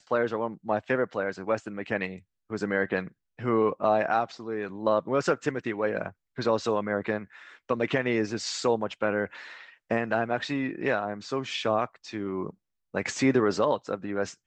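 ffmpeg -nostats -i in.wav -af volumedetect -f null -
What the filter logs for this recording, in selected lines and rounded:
mean_volume: -28.7 dB
max_volume: -11.3 dB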